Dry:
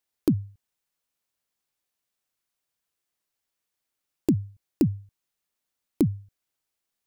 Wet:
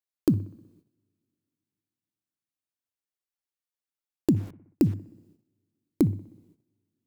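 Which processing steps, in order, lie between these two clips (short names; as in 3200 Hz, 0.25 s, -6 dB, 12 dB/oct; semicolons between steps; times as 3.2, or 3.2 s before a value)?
two-slope reverb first 0.46 s, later 3 s, from -18 dB, DRR 17.5 dB; 4.36–4.94 sample gate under -41.5 dBFS; analogue delay 62 ms, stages 1024, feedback 60%, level -20.5 dB; gate -59 dBFS, range -13 dB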